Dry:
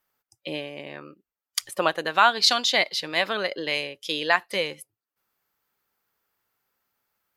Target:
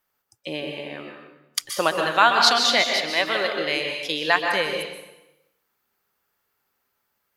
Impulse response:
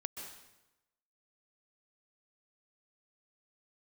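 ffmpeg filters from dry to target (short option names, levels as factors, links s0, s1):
-filter_complex "[0:a]asettb=1/sr,asplit=3[s0][s1][s2];[s0]atrim=end=3.104[s3];[s1]atrim=start=3.1:end=3.53,asetpts=PTS-STARTPTS,afade=t=in:d=0.004:c=qsin,afade=t=out:st=0.426:d=0.004:c=qsin,highpass=250[s4];[s2]atrim=start=3.526[s5];[s3][s4]acrossfade=d=0.004:c1=hsin:c2=qsin[s6];[s6][s5]acrossfade=d=0.004:c1=qsin:c2=hsin[s7];[1:a]atrim=start_sample=2205[s8];[s7][s8]afir=irnorm=-1:irlink=0,volume=1.58"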